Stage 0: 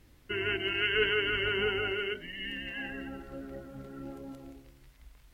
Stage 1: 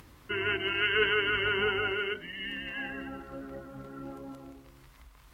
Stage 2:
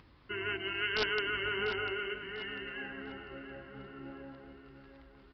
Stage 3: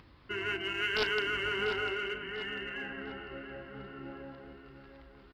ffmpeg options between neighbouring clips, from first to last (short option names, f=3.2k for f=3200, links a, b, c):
-af "acompressor=mode=upward:threshold=-46dB:ratio=2.5,highpass=47,equalizer=f=1.1k:t=o:w=0.69:g=9"
-filter_complex "[0:a]aresample=11025,aeval=exprs='(mod(6.31*val(0)+1,2)-1)/6.31':c=same,aresample=44100,asplit=2[a][b];[b]adelay=696,lowpass=f=3.2k:p=1,volume=-10dB,asplit=2[c][d];[d]adelay=696,lowpass=f=3.2k:p=1,volume=0.53,asplit=2[e][f];[f]adelay=696,lowpass=f=3.2k:p=1,volume=0.53,asplit=2[g][h];[h]adelay=696,lowpass=f=3.2k:p=1,volume=0.53,asplit=2[i][j];[j]adelay=696,lowpass=f=3.2k:p=1,volume=0.53,asplit=2[k][l];[l]adelay=696,lowpass=f=3.2k:p=1,volume=0.53[m];[a][c][e][g][i][k][m]amix=inputs=7:normalize=0,volume=-6dB"
-filter_complex "[0:a]asplit=2[a][b];[b]asoftclip=type=hard:threshold=-36.5dB,volume=-10dB[c];[a][c]amix=inputs=2:normalize=0,asplit=2[d][e];[e]adelay=35,volume=-13dB[f];[d][f]amix=inputs=2:normalize=0"